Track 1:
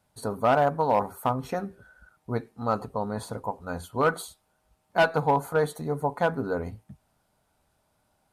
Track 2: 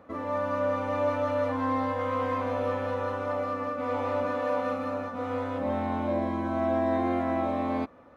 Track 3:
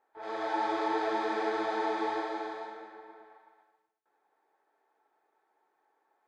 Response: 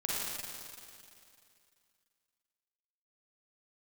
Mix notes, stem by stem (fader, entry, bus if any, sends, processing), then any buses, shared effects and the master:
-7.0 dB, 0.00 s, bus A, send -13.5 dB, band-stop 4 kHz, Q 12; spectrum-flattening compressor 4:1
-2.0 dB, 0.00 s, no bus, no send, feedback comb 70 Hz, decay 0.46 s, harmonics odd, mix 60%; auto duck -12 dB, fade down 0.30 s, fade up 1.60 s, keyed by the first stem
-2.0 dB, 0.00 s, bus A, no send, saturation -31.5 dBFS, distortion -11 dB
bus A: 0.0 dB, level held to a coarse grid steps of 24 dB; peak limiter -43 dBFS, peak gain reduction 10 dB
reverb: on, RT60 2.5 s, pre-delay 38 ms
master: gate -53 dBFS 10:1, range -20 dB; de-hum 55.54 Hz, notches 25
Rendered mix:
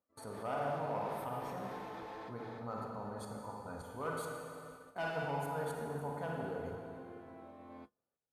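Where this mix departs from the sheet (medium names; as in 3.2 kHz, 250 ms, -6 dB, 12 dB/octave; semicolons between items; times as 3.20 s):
stem 1: missing spectrum-flattening compressor 4:1; stem 2 -2.0 dB -> -10.5 dB; master: missing de-hum 55.54 Hz, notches 25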